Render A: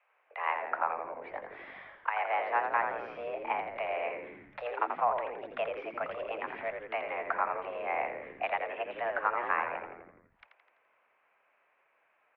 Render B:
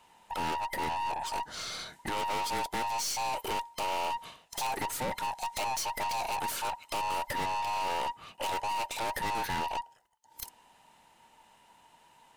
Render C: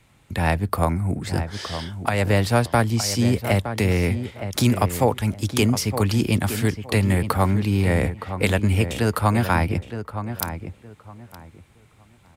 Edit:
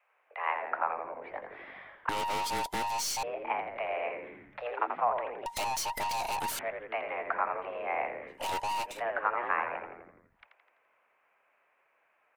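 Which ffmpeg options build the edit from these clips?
-filter_complex "[1:a]asplit=3[a][b][c];[0:a]asplit=4[d][e][f][g];[d]atrim=end=2.092[h];[a]atrim=start=2.088:end=3.232[i];[e]atrim=start=3.228:end=5.462[j];[b]atrim=start=5.458:end=6.592[k];[f]atrim=start=6.588:end=8.5[l];[c]atrim=start=8.26:end=9.03[m];[g]atrim=start=8.79[n];[h][i]acrossfade=d=0.004:c1=hsin:c2=hsin[o];[o][j]acrossfade=d=0.004:c1=hsin:c2=hsin[p];[p][k]acrossfade=d=0.004:c1=hsin:c2=hsin[q];[q][l]acrossfade=d=0.004:c1=hsin:c2=hsin[r];[r][m]acrossfade=d=0.24:c1=tri:c2=tri[s];[s][n]acrossfade=d=0.24:c1=tri:c2=tri"

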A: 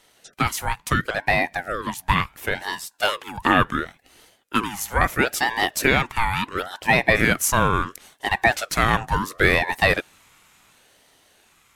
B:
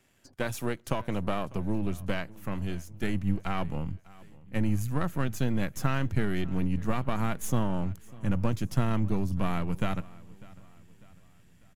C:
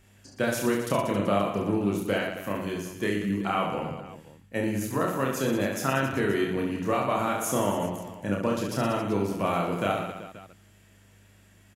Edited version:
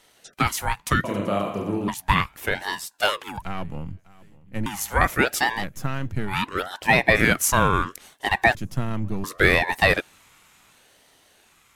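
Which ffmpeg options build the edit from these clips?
-filter_complex "[1:a]asplit=3[a][b][c];[0:a]asplit=5[d][e][f][g][h];[d]atrim=end=1.042[i];[2:a]atrim=start=1.038:end=1.882[j];[e]atrim=start=1.878:end=3.422[k];[a]atrim=start=3.418:end=4.662[l];[f]atrim=start=4.658:end=5.65[m];[b]atrim=start=5.55:end=6.36[n];[g]atrim=start=6.26:end=8.552[o];[c]atrim=start=8.548:end=9.242[p];[h]atrim=start=9.238[q];[i][j]acrossfade=d=0.004:c1=hsin:c2=hsin[r];[r][k]acrossfade=d=0.004:c1=hsin:c2=hsin[s];[s][l]acrossfade=d=0.004:c1=hsin:c2=hsin[t];[t][m]acrossfade=d=0.004:c1=hsin:c2=hsin[u];[u][n]acrossfade=d=0.1:c1=tri:c2=tri[v];[v][o]acrossfade=d=0.1:c1=tri:c2=tri[w];[w][p]acrossfade=d=0.004:c1=hsin:c2=hsin[x];[x][q]acrossfade=d=0.004:c1=hsin:c2=hsin"

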